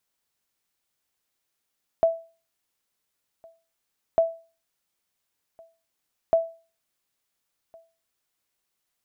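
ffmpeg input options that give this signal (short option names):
-f lavfi -i "aevalsrc='0.251*(sin(2*PI*660*mod(t,2.15))*exp(-6.91*mod(t,2.15)/0.35)+0.0335*sin(2*PI*660*max(mod(t,2.15)-1.41,0))*exp(-6.91*max(mod(t,2.15)-1.41,0)/0.35))':d=6.45:s=44100"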